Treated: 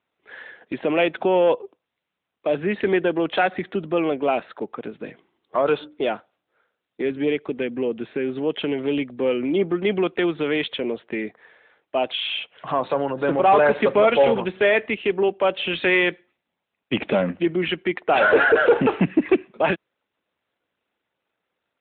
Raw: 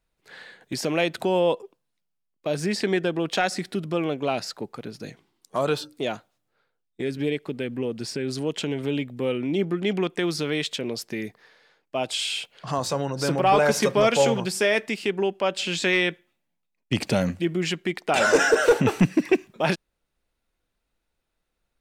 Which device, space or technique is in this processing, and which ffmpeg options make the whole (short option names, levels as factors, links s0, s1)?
telephone: -af "highpass=260,lowpass=3300,asoftclip=type=tanh:threshold=0.2,volume=2" -ar 8000 -c:a libopencore_amrnb -b:a 12200